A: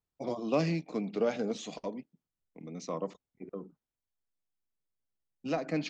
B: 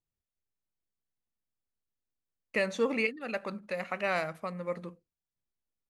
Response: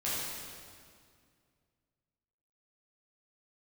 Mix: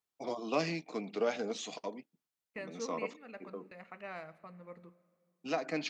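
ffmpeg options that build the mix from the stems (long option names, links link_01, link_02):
-filter_complex "[0:a]highpass=frequency=590:poles=1,volume=2dB[link_01];[1:a]agate=range=-23dB:threshold=-43dB:ratio=16:detection=peak,lowpass=frequency=2400:poles=1,volume=-13dB,asplit=2[link_02][link_03];[link_03]volume=-24dB[link_04];[2:a]atrim=start_sample=2205[link_05];[link_04][link_05]afir=irnorm=-1:irlink=0[link_06];[link_01][link_02][link_06]amix=inputs=3:normalize=0,bandreject=frequency=550:width=12"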